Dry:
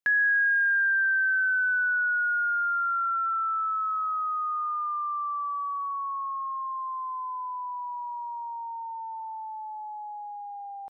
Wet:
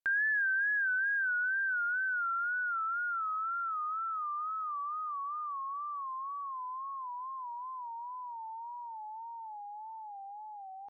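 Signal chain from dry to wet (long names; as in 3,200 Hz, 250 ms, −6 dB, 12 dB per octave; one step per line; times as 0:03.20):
tape wow and flutter 90 cents
level −7 dB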